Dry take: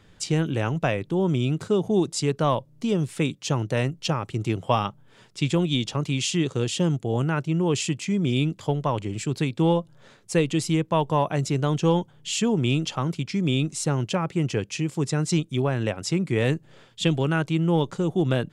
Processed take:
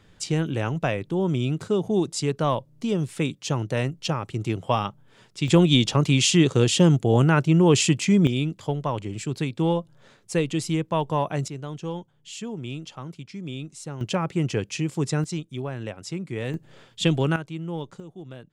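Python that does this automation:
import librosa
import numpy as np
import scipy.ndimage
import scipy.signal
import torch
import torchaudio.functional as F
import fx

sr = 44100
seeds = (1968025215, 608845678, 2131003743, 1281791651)

y = fx.gain(x, sr, db=fx.steps((0.0, -1.0), (5.48, 6.0), (8.27, -2.0), (11.48, -11.0), (14.01, 0.0), (15.24, -7.5), (16.54, 1.0), (17.36, -10.0), (18.0, -18.0)))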